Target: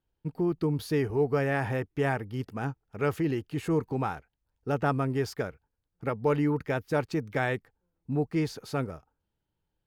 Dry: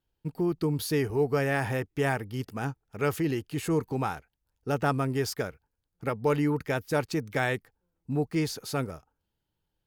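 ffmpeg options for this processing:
ffmpeg -i in.wav -af "highshelf=frequency=4100:gain=-11" out.wav

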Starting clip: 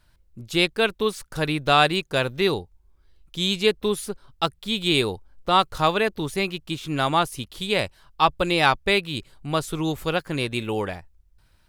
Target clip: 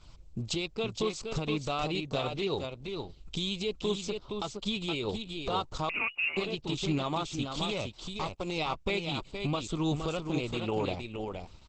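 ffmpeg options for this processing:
ffmpeg -i in.wav -filter_complex "[0:a]acompressor=threshold=-43dB:ratio=2,alimiter=level_in=4dB:limit=-24dB:level=0:latency=1:release=96,volume=-4dB,asettb=1/sr,asplit=3[link_01][link_02][link_03];[link_01]atrim=end=0.524[link_04];[link_02]atrim=start=0.52:end=1.05,asetpts=PTS-STARTPTS,afade=type=in:duration=0.004:curve=qsin,afade=type=out:start_time=0.526:duration=0.004:curve=qsin,acompressor=mode=upward:threshold=-43dB:ratio=2.5[link_05];[link_03]atrim=start=1.046[link_06];[link_04][link_05]acrossfade=duration=0.004:curve1=hsin:curve2=qsin[link_07];[link_07][link_06]acrossfade=duration=0.004:curve1=qsin:curve2=hsin,aeval=exprs='0.0422*(cos(1*acos(clip(val(0)/0.0422,-1,1)))-cos(1*PI/2))+0.00075*(cos(6*acos(clip(val(0)/0.0422,-1,1)))-cos(6*PI/2))':channel_layout=same,asettb=1/sr,asplit=3[link_08][link_09][link_10];[link_08]atrim=end=7.674[link_11];[link_09]atrim=start=7.67:end=8.58,asetpts=PTS-STARTPTS,afade=type=in:duration=0.004:curve=qsin,afade=type=out:start_time=0.906:duration=0.004:curve=qsin,aeval=exprs='clip(val(0),-1,0.0075)':channel_layout=same[link_12];[link_10]atrim=start=8.576[link_13];[link_11][link_12]acrossfade=duration=0.004:curve1=hsin:curve2=qsin[link_14];[link_14][link_13]acrossfade=duration=0.004:curve1=qsin:curve2=hsin,aecho=1:1:468:0.531,asettb=1/sr,asplit=3[link_15][link_16][link_17];[link_15]atrim=end=5.894[link_18];[link_16]atrim=start=5.89:end=6.37,asetpts=PTS-STARTPTS,afade=type=in:duration=0.004:curve=qsin,afade=type=out:start_time=0.476:duration=0.004:curve=qsin,lowpass=frequency=2500:width_type=q:width=0.5098,lowpass=frequency=2500:width_type=q:width=0.6013,lowpass=frequency=2500:width_type=q:width=0.9,lowpass=frequency=2500:width_type=q:width=2.563,afreqshift=-2900[link_19];[link_17]atrim=start=6.366[link_20];[link_18][link_19]acrossfade=duration=0.004:curve1=hsin:curve2=qsin[link_21];[link_21][link_20]acrossfade=duration=0.004:curve1=qsin:curve2=hsin,asuperstop=centerf=1700:order=4:qfactor=2.1,volume=8.5dB" -ar 48000 -c:a libopus -b:a 10k out.opus

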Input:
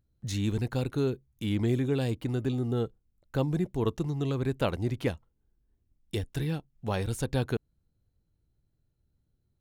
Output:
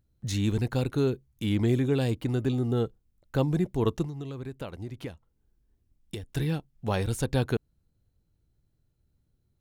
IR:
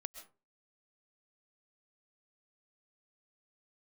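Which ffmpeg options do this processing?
-filter_complex "[0:a]asettb=1/sr,asplit=3[link_01][link_02][link_03];[link_01]atrim=end=4.034[link_04];[link_02]atrim=start=4.03:end=6.29,asetpts=PTS-STARTPTS,afade=type=in:duration=0.004:curve=qsin,afade=type=out:start_time=2.256:duration=0.004:curve=qsin,acompressor=threshold=-37dB:ratio=6[link_05];[link_03]atrim=start=6.286[link_06];[link_04][link_05]acrossfade=duration=0.004:curve1=hsin:curve2=qsin[link_07];[link_07][link_06]acrossfade=duration=0.004:curve1=qsin:curve2=hsin,volume=2.5dB"

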